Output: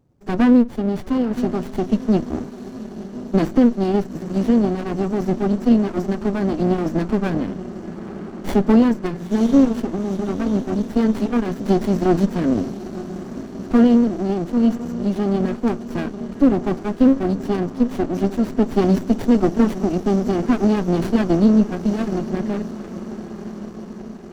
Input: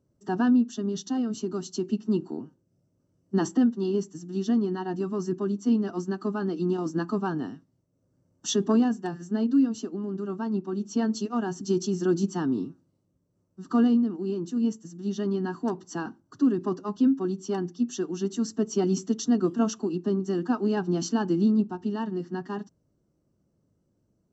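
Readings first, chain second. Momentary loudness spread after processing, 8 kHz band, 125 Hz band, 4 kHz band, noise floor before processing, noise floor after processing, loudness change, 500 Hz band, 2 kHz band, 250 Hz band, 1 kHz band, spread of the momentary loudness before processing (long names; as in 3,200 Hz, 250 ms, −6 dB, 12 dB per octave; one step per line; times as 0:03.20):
16 LU, can't be measured, +9.0 dB, +2.0 dB, −72 dBFS, −35 dBFS, +8.0 dB, +8.0 dB, +7.5 dB, +8.0 dB, +8.0 dB, 10 LU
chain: feedback delay with all-pass diffusion 945 ms, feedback 65%, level −14 dB
windowed peak hold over 33 samples
level +9 dB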